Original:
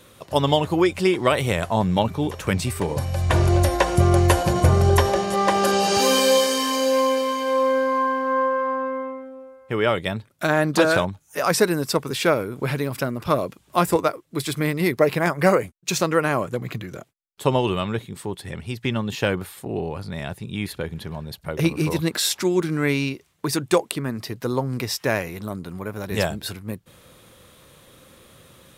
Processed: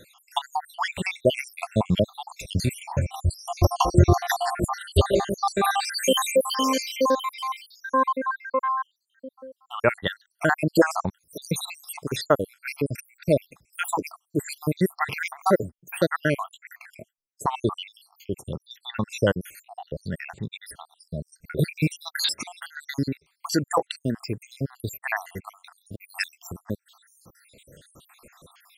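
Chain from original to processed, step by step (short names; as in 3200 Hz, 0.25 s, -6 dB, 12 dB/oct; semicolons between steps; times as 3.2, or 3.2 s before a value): random spectral dropouts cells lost 77%; gain +2.5 dB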